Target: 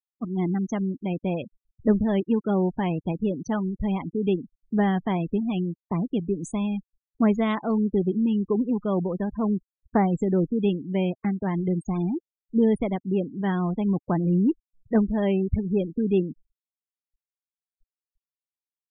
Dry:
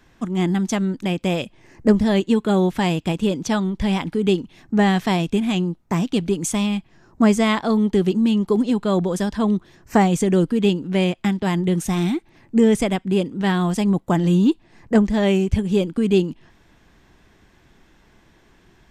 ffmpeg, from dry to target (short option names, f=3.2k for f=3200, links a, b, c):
-af "highshelf=f=2.2k:g=-8.5,afftfilt=real='re*gte(hypot(re,im),0.0501)':imag='im*gte(hypot(re,im),0.0501)':win_size=1024:overlap=0.75,volume=-5dB"